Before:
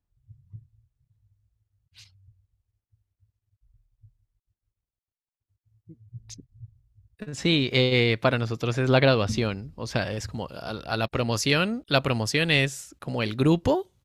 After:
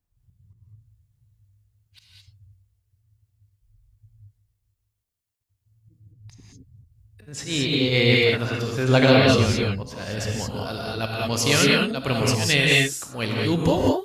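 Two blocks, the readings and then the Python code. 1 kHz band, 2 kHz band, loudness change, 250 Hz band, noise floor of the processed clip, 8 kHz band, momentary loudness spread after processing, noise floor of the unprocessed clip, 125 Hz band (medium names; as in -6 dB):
+2.5 dB, +4.5 dB, +4.0 dB, +3.5 dB, -79 dBFS, +8.5 dB, 14 LU, under -85 dBFS, +3.0 dB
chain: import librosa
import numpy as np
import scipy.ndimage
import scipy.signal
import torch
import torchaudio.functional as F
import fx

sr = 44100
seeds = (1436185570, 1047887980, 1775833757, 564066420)

y = fx.high_shelf(x, sr, hz=5500.0, db=6.5)
y = fx.auto_swell(y, sr, attack_ms=170.0)
y = fx.rev_gated(y, sr, seeds[0], gate_ms=240, shape='rising', drr_db=-3.0)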